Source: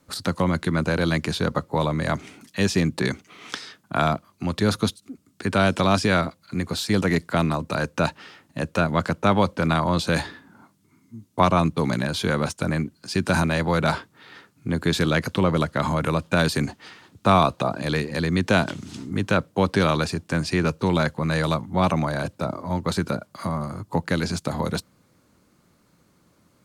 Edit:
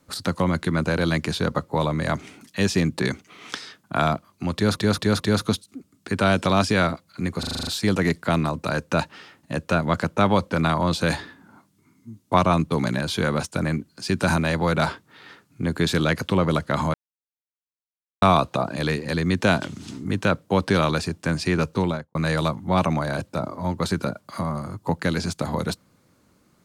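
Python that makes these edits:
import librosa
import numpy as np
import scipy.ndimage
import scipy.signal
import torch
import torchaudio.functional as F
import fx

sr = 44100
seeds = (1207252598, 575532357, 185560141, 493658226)

y = fx.studio_fade_out(x, sr, start_s=20.81, length_s=0.4)
y = fx.edit(y, sr, fx.stutter(start_s=4.54, slice_s=0.22, count=4),
    fx.stutter(start_s=6.73, slice_s=0.04, count=8),
    fx.silence(start_s=16.0, length_s=1.28), tone=tone)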